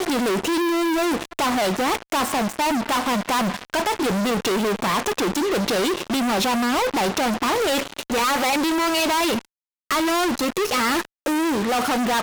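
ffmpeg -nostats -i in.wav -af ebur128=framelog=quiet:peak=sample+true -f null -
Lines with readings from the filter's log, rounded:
Integrated loudness:
  I:         -21.6 LUFS
  Threshold: -31.6 LUFS
Loudness range:
  LRA:         1.2 LU
  Threshold: -41.7 LUFS
  LRA low:   -22.2 LUFS
  LRA high:  -21.0 LUFS
Sample peak:
  Peak:      -15.0 dBFS
True peak:
  Peak:      -14.9 dBFS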